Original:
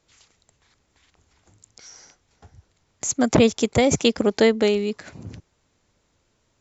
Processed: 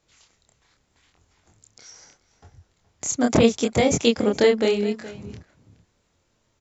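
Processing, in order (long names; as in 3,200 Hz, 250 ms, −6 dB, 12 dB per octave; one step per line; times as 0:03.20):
slap from a distant wall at 72 metres, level −16 dB
chorus effect 0.79 Hz, depth 6.8 ms
level +2 dB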